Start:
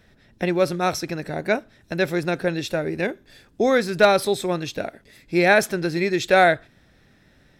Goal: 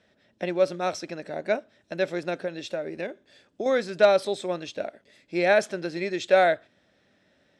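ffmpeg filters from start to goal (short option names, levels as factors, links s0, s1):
-filter_complex "[0:a]asettb=1/sr,asplit=3[s0][s1][s2];[s0]atrim=end=2.414[s3];[s1]atrim=start=2.41:end=3.66,asetpts=PTS-STARTPTS,afade=t=in:d=0.004:c=qsin,afade=t=out:st=1.246:d=0.004:c=qsin,acompressor=threshold=0.0794:ratio=6[s4];[s2]atrim=start=3.656[s5];[s3][s4]acrossfade=d=0.004:c1=hsin:c2=qsin[s6];[s6][s5]acrossfade=d=0.004:c1=qsin:c2=hsin,highpass=130,equalizer=f=140:t=q:w=4:g=-8,equalizer=f=590:t=q:w=4:g=8,equalizer=f=3100:t=q:w=4:g=4,lowpass=f=8700:w=0.5412,lowpass=f=8700:w=1.3066,volume=0.422"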